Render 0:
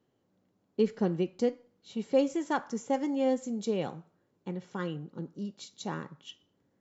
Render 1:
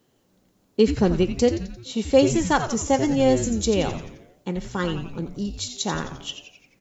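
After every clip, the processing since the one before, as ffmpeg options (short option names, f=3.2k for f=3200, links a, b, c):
-filter_complex "[0:a]highshelf=f=3.4k:g=11,asplit=2[a][b];[b]asplit=6[c][d][e][f][g][h];[c]adelay=87,afreqshift=-150,volume=-9dB[i];[d]adelay=174,afreqshift=-300,volume=-14.5dB[j];[e]adelay=261,afreqshift=-450,volume=-20dB[k];[f]adelay=348,afreqshift=-600,volume=-25.5dB[l];[g]adelay=435,afreqshift=-750,volume=-31.1dB[m];[h]adelay=522,afreqshift=-900,volume=-36.6dB[n];[i][j][k][l][m][n]amix=inputs=6:normalize=0[o];[a][o]amix=inputs=2:normalize=0,volume=8.5dB"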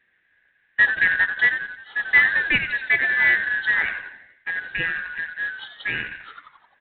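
-af "afftfilt=real='real(if(lt(b,272),68*(eq(floor(b/68),0)*1+eq(floor(b/68),1)*0+eq(floor(b/68),2)*3+eq(floor(b/68),3)*2)+mod(b,68),b),0)':imag='imag(if(lt(b,272),68*(eq(floor(b/68),0)*1+eq(floor(b/68),1)*0+eq(floor(b/68),2)*3+eq(floor(b/68),3)*2)+mod(b,68),b),0)':win_size=2048:overlap=0.75,aresample=8000,acrusher=bits=4:mode=log:mix=0:aa=0.000001,aresample=44100"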